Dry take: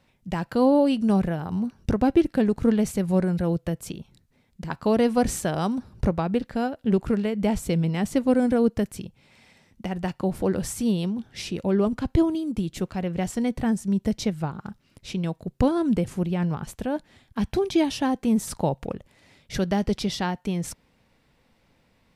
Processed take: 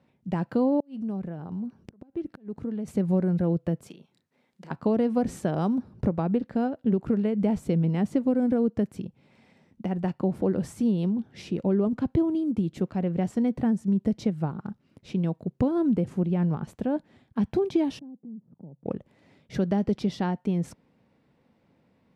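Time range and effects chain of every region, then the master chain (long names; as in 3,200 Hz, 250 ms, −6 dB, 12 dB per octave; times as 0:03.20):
0:00.80–0:02.88: downward compressor 2.5 to 1, threshold −36 dBFS + gate with flip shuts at −23 dBFS, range −27 dB
0:03.87–0:04.71: high-pass filter 990 Hz 6 dB per octave + double-tracking delay 33 ms −9.5 dB + multiband upward and downward compressor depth 40%
0:17.99–0:18.86: four-pole ladder band-pass 200 Hz, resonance 35% + downward compressor 2.5 to 1, threshold −46 dBFS
whole clip: high-pass filter 190 Hz 12 dB per octave; spectral tilt −3.5 dB per octave; downward compressor, threshold −16 dBFS; level −3.5 dB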